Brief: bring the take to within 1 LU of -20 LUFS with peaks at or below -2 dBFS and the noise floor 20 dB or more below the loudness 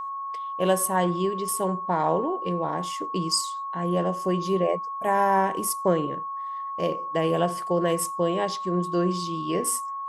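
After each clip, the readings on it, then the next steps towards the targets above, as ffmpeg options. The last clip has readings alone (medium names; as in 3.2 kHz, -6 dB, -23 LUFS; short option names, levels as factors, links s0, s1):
steady tone 1.1 kHz; tone level -30 dBFS; loudness -26.0 LUFS; peak level -10.5 dBFS; loudness target -20.0 LUFS
-> -af "bandreject=f=1100:w=30"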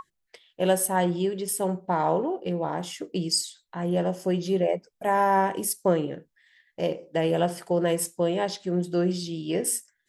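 steady tone not found; loudness -26.5 LUFS; peak level -11.0 dBFS; loudness target -20.0 LUFS
-> -af "volume=2.11"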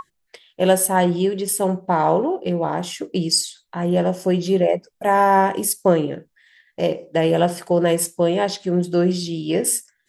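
loudness -20.0 LUFS; peak level -4.5 dBFS; noise floor -71 dBFS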